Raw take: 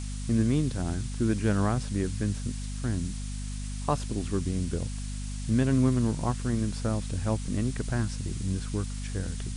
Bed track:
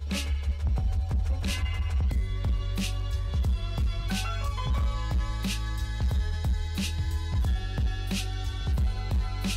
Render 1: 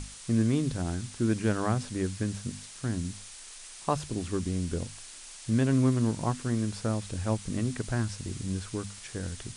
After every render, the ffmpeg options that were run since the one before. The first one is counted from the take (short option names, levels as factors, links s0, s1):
-af "bandreject=f=50:t=h:w=6,bandreject=f=100:t=h:w=6,bandreject=f=150:t=h:w=6,bandreject=f=200:t=h:w=6,bandreject=f=250:t=h:w=6"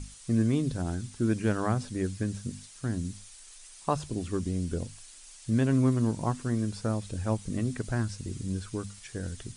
-af "afftdn=nr=8:nf=-47"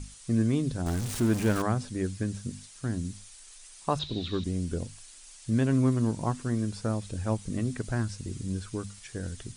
-filter_complex "[0:a]asettb=1/sr,asplit=3[s0][s1][s2];[s0]atrim=end=0.864[s3];[s1]atrim=start=0.86:end=1.62,asetpts=PTS-STARTPTS,afade=t=in:d=0.004:c=qsin,afade=t=out:st=0.756:d=0.004:c=qsin,aeval=exprs='val(0)+0.5*0.0299*sgn(val(0))':c=same[s4];[s2]atrim=start=1.616[s5];[s3][s4]acrossfade=d=0.004:c1=hsin:c2=qsin[s6];[s6][s5]acrossfade=d=0.004:c1=qsin:c2=hsin,asettb=1/sr,asplit=3[s7][s8][s9];[s7]atrim=end=3.994[s10];[s8]atrim=start=3.99:end=4.44,asetpts=PTS-STARTPTS,afade=t=in:d=0.004:c=qsin,afade=t=out:st=0.446:d=0.004:c=qsin,lowpass=f=3800:t=q:w=16[s11];[s9]atrim=start=4.436[s12];[s10][s11]acrossfade=d=0.004:c1=hsin:c2=qsin[s13];[s13][s12]acrossfade=d=0.004:c1=qsin:c2=hsin"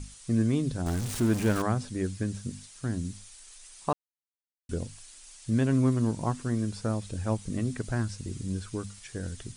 -filter_complex "[0:a]asplit=3[s0][s1][s2];[s0]atrim=end=3.93,asetpts=PTS-STARTPTS,afade=t=out:st=3.926:d=0.004:c=hsin[s3];[s1]atrim=start=3.93:end=4.69,asetpts=PTS-STARTPTS,volume=0[s4];[s2]atrim=start=4.69,asetpts=PTS-STARTPTS,afade=t=in:d=0.004:c=hsin[s5];[s3][s4][s5]concat=n=3:v=0:a=1"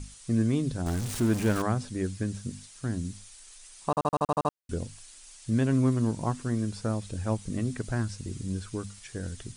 -filter_complex "[0:a]asplit=9[s0][s1][s2][s3][s4][s5][s6][s7][s8];[s0]atrim=end=3.972[s9];[s1]atrim=start=3.888:end=3.972[s10];[s2]atrim=start=3.888:end=3.972[s11];[s3]atrim=start=3.888:end=3.972[s12];[s4]atrim=start=3.888:end=3.972[s13];[s5]atrim=start=3.888:end=3.972[s14];[s6]atrim=start=3.888:end=3.972[s15];[s7]atrim=start=3.888:end=3.972[s16];[s8]atrim=start=4.528[s17];[s9][s10]acrossfade=d=0.004:c1=hsin:c2=hsin[s18];[s18][s11]acrossfade=d=0.004:c1=hsin:c2=hsin[s19];[s19][s12]acrossfade=d=0.004:c1=hsin:c2=hsin[s20];[s20][s13]acrossfade=d=0.004:c1=hsin:c2=hsin[s21];[s21][s14]acrossfade=d=0.004:c1=hsin:c2=hsin[s22];[s22][s15]acrossfade=d=0.004:c1=hsin:c2=hsin[s23];[s23][s16]acrossfade=d=0.004:c1=hsin:c2=hsin[s24];[s24][s17]acrossfade=d=0.004:c1=hsin:c2=hsin"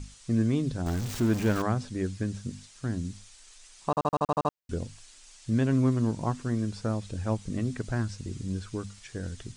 -af "equalizer=f=9800:w=2.1:g=-9.5"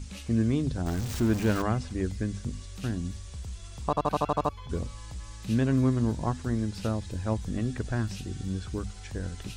-filter_complex "[1:a]volume=0.237[s0];[0:a][s0]amix=inputs=2:normalize=0"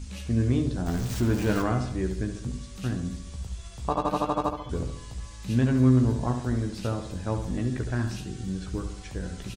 -filter_complex "[0:a]asplit=2[s0][s1];[s1]adelay=16,volume=0.422[s2];[s0][s2]amix=inputs=2:normalize=0,asplit=2[s3][s4];[s4]adelay=70,lowpass=f=2700:p=1,volume=0.422,asplit=2[s5][s6];[s6]adelay=70,lowpass=f=2700:p=1,volume=0.53,asplit=2[s7][s8];[s8]adelay=70,lowpass=f=2700:p=1,volume=0.53,asplit=2[s9][s10];[s10]adelay=70,lowpass=f=2700:p=1,volume=0.53,asplit=2[s11][s12];[s12]adelay=70,lowpass=f=2700:p=1,volume=0.53,asplit=2[s13][s14];[s14]adelay=70,lowpass=f=2700:p=1,volume=0.53[s15];[s3][s5][s7][s9][s11][s13][s15]amix=inputs=7:normalize=0"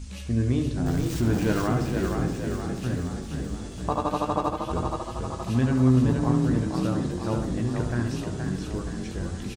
-filter_complex "[0:a]asplit=8[s0][s1][s2][s3][s4][s5][s6][s7];[s1]adelay=472,afreqshift=30,volume=0.562[s8];[s2]adelay=944,afreqshift=60,volume=0.316[s9];[s3]adelay=1416,afreqshift=90,volume=0.176[s10];[s4]adelay=1888,afreqshift=120,volume=0.0989[s11];[s5]adelay=2360,afreqshift=150,volume=0.0556[s12];[s6]adelay=2832,afreqshift=180,volume=0.0309[s13];[s7]adelay=3304,afreqshift=210,volume=0.0174[s14];[s0][s8][s9][s10][s11][s12][s13][s14]amix=inputs=8:normalize=0"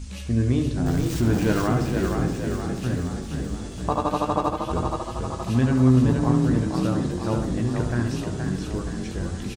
-af "volume=1.33"